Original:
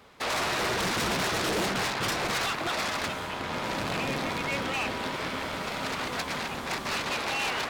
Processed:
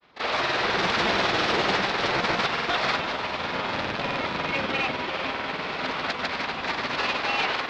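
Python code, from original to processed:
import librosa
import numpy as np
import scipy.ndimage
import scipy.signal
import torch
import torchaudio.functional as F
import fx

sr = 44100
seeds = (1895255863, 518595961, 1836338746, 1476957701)

y = scipy.signal.sosfilt(scipy.signal.butter(4, 4700.0, 'lowpass', fs=sr, output='sos'), x)
y = fx.low_shelf(y, sr, hz=220.0, db=-7.0)
y = fx.echo_diffused(y, sr, ms=509, feedback_pct=44, wet_db=-6.0)
y = fx.granulator(y, sr, seeds[0], grain_ms=100.0, per_s=20.0, spray_ms=100.0, spread_st=0)
y = fx.upward_expand(y, sr, threshold_db=-42.0, expansion=1.5)
y = y * librosa.db_to_amplitude(6.5)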